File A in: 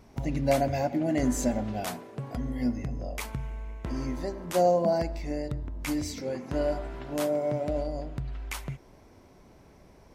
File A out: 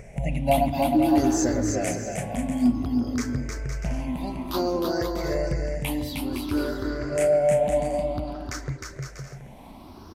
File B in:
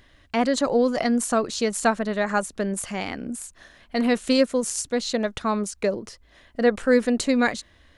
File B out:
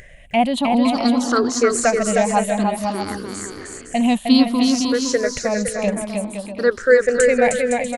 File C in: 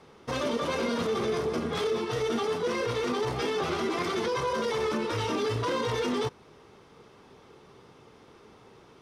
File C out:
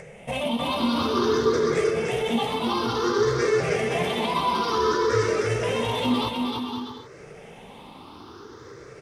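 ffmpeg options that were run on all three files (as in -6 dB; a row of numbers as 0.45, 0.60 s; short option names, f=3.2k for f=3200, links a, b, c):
-af "afftfilt=real='re*pow(10,20/40*sin(2*PI*(0.52*log(max(b,1)*sr/1024/100)/log(2)-(0.56)*(pts-256)/sr)))':imag='im*pow(10,20/40*sin(2*PI*(0.52*log(max(b,1)*sr/1024/100)/log(2)-(0.56)*(pts-256)/sr)))':win_size=1024:overlap=0.75,aecho=1:1:310|511.5|642.5|727.6|782.9:0.631|0.398|0.251|0.158|0.1,acompressor=mode=upward:threshold=-35dB:ratio=2.5,volume=-1dB"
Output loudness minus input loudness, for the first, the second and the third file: +5.0, +5.5, +5.0 LU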